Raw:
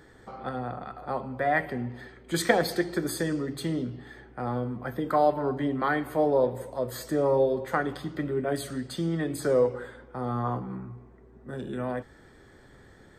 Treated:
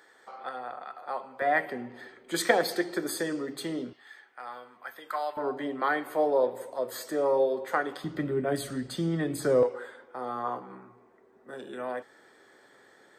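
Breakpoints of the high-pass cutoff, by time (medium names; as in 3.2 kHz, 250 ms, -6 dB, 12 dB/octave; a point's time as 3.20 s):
660 Hz
from 1.42 s 310 Hz
from 3.93 s 1.2 kHz
from 5.37 s 380 Hz
from 8.04 s 100 Hz
from 9.63 s 430 Hz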